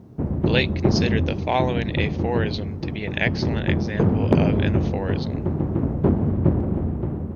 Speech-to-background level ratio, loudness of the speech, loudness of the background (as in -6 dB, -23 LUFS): -4.5 dB, -28.0 LUFS, -23.5 LUFS